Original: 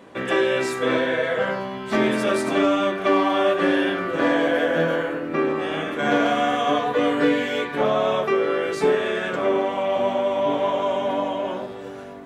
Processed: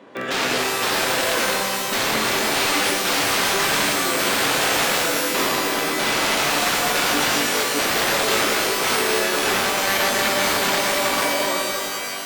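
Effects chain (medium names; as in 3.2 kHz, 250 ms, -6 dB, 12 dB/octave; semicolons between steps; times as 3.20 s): integer overflow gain 17.5 dB; three-band isolator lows -12 dB, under 160 Hz, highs -13 dB, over 6.7 kHz; pitch-shifted reverb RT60 2.2 s, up +12 st, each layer -2 dB, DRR 2 dB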